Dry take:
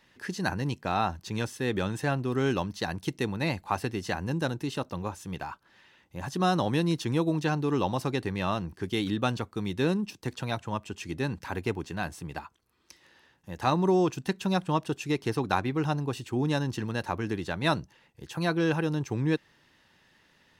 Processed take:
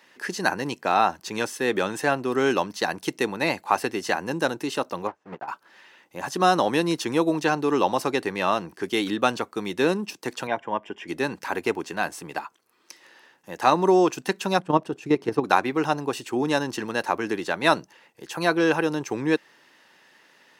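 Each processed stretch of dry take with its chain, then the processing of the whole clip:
5.07–5.48 block floating point 3-bit + LPF 1300 Hz + upward expander 2.5:1, over -43 dBFS
10.47–11.08 polynomial smoothing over 25 samples + notch comb 1300 Hz
14.59–15.44 tilt -3 dB/oct + level quantiser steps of 10 dB
whole clip: HPF 330 Hz 12 dB/oct; bell 3600 Hz -3.5 dB 0.54 oct; gain +8 dB

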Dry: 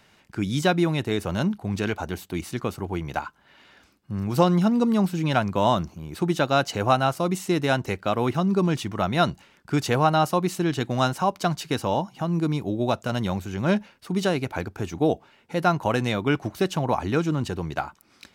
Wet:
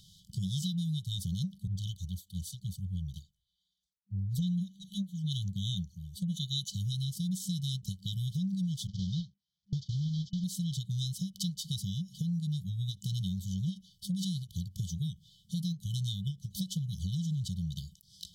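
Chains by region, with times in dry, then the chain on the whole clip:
1.67–6.69 notch 5200 Hz, Q 16 + envelope flanger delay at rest 5.1 ms, full sweep at -21 dBFS + three-band expander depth 100%
8.87–10.44 delta modulation 32 kbps, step -36 dBFS + HPF 52 Hz + gate -33 dBFS, range -46 dB
whole clip: FFT band-reject 200–3000 Hz; compressor 5:1, threshold -37 dBFS; ending taper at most 300 dB/s; gain +5 dB

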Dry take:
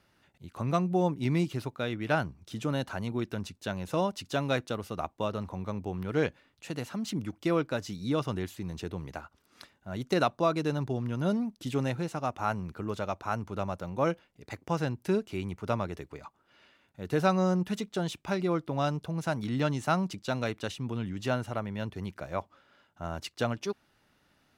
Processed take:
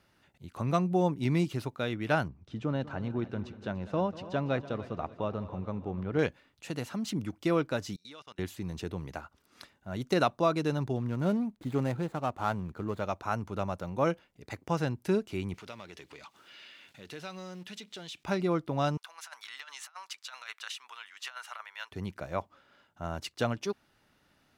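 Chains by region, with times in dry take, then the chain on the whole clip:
2.28–6.19 tape spacing loss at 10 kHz 25 dB + multi-head echo 97 ms, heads second and third, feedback 49%, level -17 dB
7.96–8.39 band-pass 3700 Hz, Q 0.58 + level quantiser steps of 24 dB
10.96–13.01 median filter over 15 samples + bell 5200 Hz -5.5 dB 0.28 oct
15.54–18.24 G.711 law mismatch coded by mu + weighting filter D + compressor 2:1, threshold -53 dBFS
18.97–21.92 HPF 1100 Hz 24 dB/oct + high shelf 4400 Hz -3.5 dB + negative-ratio compressor -42 dBFS, ratio -0.5
whole clip: dry

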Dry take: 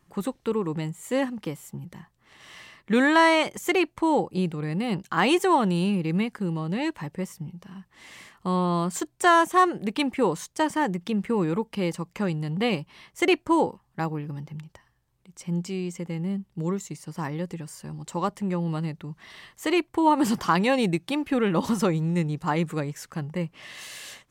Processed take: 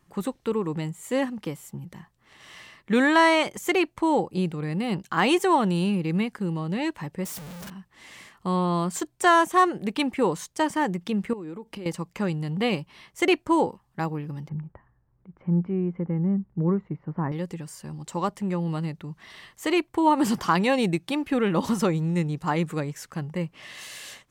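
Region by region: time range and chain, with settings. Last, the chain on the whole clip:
7.25–7.7 infinite clipping + high shelf 8500 Hz +6 dB
11.33–11.86 bell 340 Hz +6.5 dB 0.67 oct + compressor 16:1, threshold -33 dBFS
14.49–17.32 LPF 1700 Hz 24 dB/oct + low shelf 410 Hz +6 dB
whole clip: dry

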